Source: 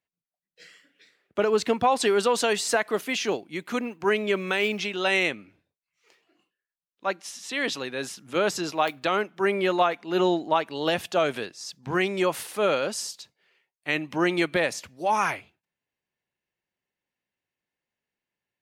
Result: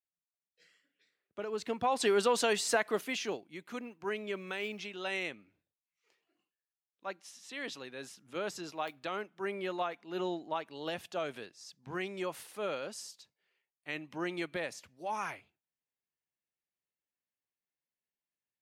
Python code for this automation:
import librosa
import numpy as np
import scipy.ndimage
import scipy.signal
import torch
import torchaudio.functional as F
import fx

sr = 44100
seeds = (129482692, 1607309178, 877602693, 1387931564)

y = fx.gain(x, sr, db=fx.line((1.44, -16.0), (2.1, -5.5), (2.91, -5.5), (3.57, -13.0)))